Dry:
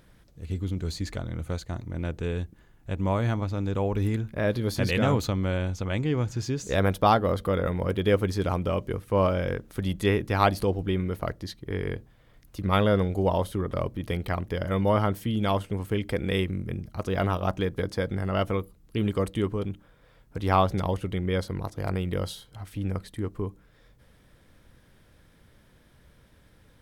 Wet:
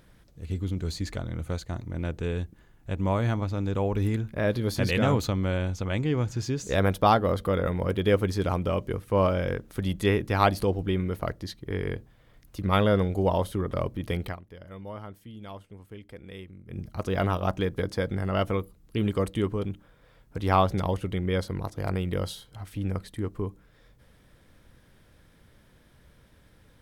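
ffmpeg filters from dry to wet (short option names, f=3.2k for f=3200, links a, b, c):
-filter_complex "[0:a]asplit=3[a][b][c];[a]atrim=end=14.41,asetpts=PTS-STARTPTS,afade=t=out:st=14.26:d=0.15:c=qua:silence=0.149624[d];[b]atrim=start=14.41:end=16.64,asetpts=PTS-STARTPTS,volume=-16.5dB[e];[c]atrim=start=16.64,asetpts=PTS-STARTPTS,afade=t=in:d=0.15:c=qua:silence=0.149624[f];[d][e][f]concat=n=3:v=0:a=1"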